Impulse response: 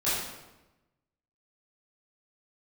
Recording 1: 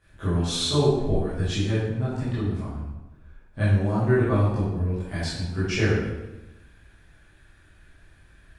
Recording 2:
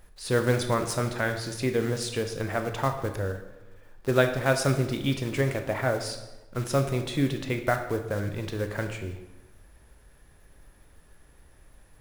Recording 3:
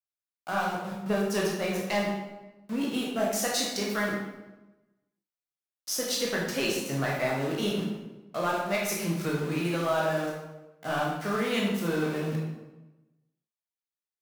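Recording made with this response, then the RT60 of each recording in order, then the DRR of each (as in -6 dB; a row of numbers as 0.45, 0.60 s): 1; 1.0, 1.0, 1.0 s; -12.5, 5.5, -4.0 dB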